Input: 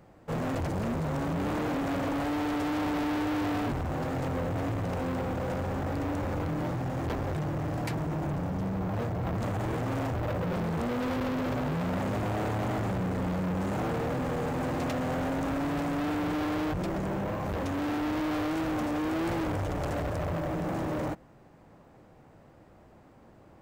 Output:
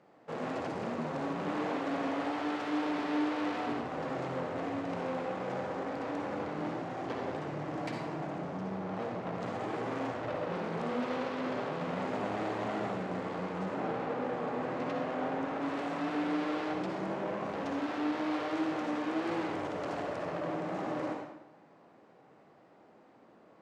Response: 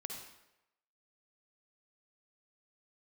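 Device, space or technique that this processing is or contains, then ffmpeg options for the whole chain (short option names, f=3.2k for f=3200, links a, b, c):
supermarket ceiling speaker: -filter_complex "[0:a]asettb=1/sr,asplit=3[a][b][c];[a]atrim=end=13.654[d];[b]atrim=start=13.65:end=15.62,asetpts=PTS-STARTPTS,afade=t=in:d=0.004:c=qsin,afade=t=out:st=1.966:d=0.004:c=qsin,highshelf=f=4.6k:g=-10.5[e];[c]atrim=start=15.616[f];[d][e]acrossfade=d=0.004:c1=hsin:c2=qsin[g];[g][f]acrossfade=d=0.004:c1=qsin:c2=hsin,highpass=260,lowpass=5.4k[h];[1:a]atrim=start_sample=2205[i];[h][i]afir=irnorm=-1:irlink=0"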